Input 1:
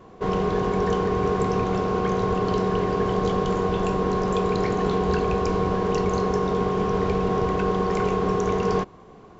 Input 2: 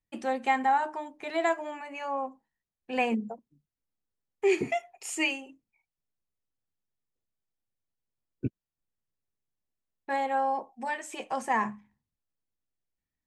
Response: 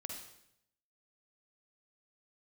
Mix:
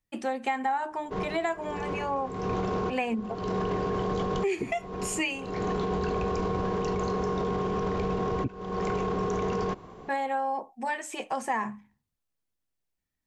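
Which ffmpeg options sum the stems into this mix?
-filter_complex "[0:a]alimiter=limit=-19.5dB:level=0:latency=1:release=14,adelay=900,volume=1dB[link_01];[1:a]volume=3dB,asplit=2[link_02][link_03];[link_03]apad=whole_len=453803[link_04];[link_01][link_04]sidechaincompress=threshold=-41dB:ratio=8:attack=10:release=281[link_05];[link_05][link_02]amix=inputs=2:normalize=0,acompressor=threshold=-25dB:ratio=6"

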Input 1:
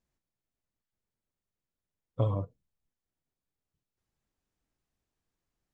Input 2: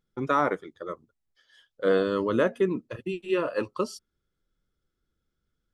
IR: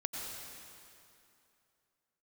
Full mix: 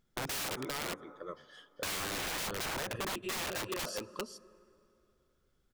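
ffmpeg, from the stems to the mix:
-filter_complex "[0:a]volume=-0.5dB,asplit=2[link_01][link_02];[link_02]volume=-11dB[link_03];[1:a]volume=2dB,asplit=3[link_04][link_05][link_06];[link_05]volume=-22dB[link_07];[link_06]volume=-9.5dB[link_08];[2:a]atrim=start_sample=2205[link_09];[link_03][link_07]amix=inputs=2:normalize=0[link_10];[link_10][link_09]afir=irnorm=-1:irlink=0[link_11];[link_08]aecho=0:1:397:1[link_12];[link_01][link_04][link_11][link_12]amix=inputs=4:normalize=0,aeval=exprs='(mod(18.8*val(0)+1,2)-1)/18.8':channel_layout=same,acompressor=threshold=-35dB:ratio=6"

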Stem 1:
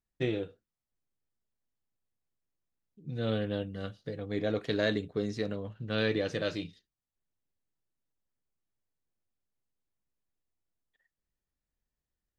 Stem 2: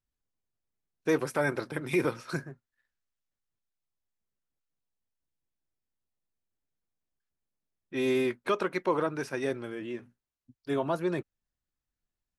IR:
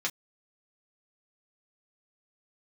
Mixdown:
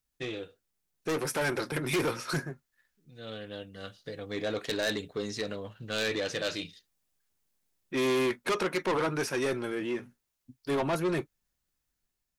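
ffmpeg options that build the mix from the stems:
-filter_complex "[0:a]lowshelf=frequency=430:gain=-10.5,volume=1.5dB[link_01];[1:a]volume=0.5dB,asplit=3[link_02][link_03][link_04];[link_03]volume=-14dB[link_05];[link_04]apad=whole_len=546138[link_06];[link_01][link_06]sidechaincompress=threshold=-45dB:ratio=8:attack=8:release=1310[link_07];[2:a]atrim=start_sample=2205[link_08];[link_05][link_08]afir=irnorm=-1:irlink=0[link_09];[link_07][link_02][link_09]amix=inputs=3:normalize=0,asoftclip=type=tanh:threshold=-28.5dB,highshelf=frequency=4900:gain=7,dynaudnorm=framelen=850:gausssize=3:maxgain=4dB"

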